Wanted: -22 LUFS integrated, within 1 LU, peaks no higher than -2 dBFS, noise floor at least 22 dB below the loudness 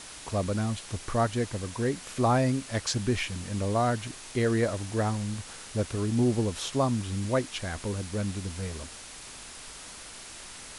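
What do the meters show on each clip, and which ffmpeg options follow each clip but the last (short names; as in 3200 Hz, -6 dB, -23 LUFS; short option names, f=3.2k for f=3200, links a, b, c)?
noise floor -45 dBFS; noise floor target -52 dBFS; loudness -29.5 LUFS; peak -13.5 dBFS; loudness target -22.0 LUFS
-> -af "afftdn=nr=7:nf=-45"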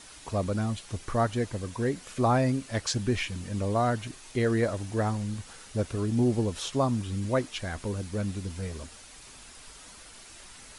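noise floor -49 dBFS; noise floor target -52 dBFS
-> -af "afftdn=nr=6:nf=-49"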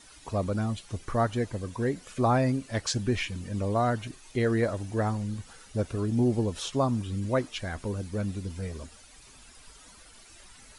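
noise floor -53 dBFS; loudness -29.5 LUFS; peak -13.5 dBFS; loudness target -22.0 LUFS
-> -af "volume=7.5dB"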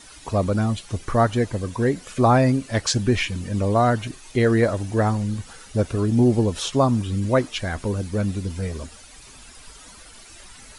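loudness -22.0 LUFS; peak -6.0 dBFS; noise floor -45 dBFS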